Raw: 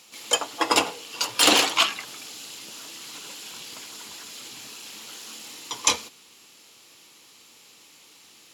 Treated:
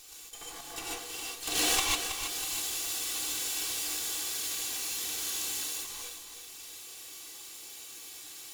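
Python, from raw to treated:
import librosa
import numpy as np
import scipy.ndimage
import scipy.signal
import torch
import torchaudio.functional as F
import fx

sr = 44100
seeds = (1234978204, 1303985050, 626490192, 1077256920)

y = fx.lower_of_two(x, sr, delay_ms=2.6)
y = fx.high_shelf(y, sr, hz=4900.0, db=11.0)
y = fx.auto_swell(y, sr, attack_ms=641.0)
y = fx.echo_feedback(y, sr, ms=322, feedback_pct=46, wet_db=-8.5)
y = fx.rev_gated(y, sr, seeds[0], gate_ms=170, shape='rising', drr_db=-5.0)
y = F.gain(torch.from_numpy(y), -5.0).numpy()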